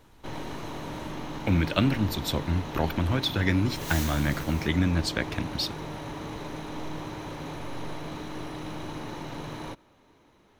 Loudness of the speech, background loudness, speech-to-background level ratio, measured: −27.5 LKFS, −37.0 LKFS, 9.5 dB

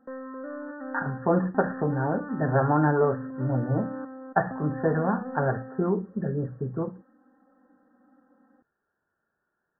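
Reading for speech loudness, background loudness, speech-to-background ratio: −27.5 LKFS, −37.5 LKFS, 10.0 dB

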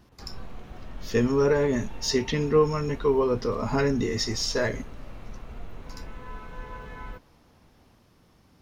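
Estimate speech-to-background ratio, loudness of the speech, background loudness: 18.5 dB, −25.0 LKFS, −43.5 LKFS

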